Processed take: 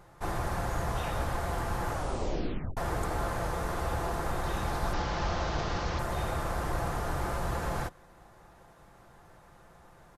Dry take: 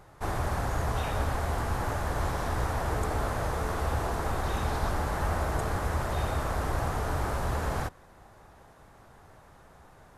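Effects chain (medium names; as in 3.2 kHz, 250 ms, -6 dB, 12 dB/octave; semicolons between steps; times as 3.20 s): 4.93–5.99 s: one-bit delta coder 32 kbps, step -31 dBFS; comb 5.8 ms, depth 35%; 1.91 s: tape stop 0.86 s; trim -2 dB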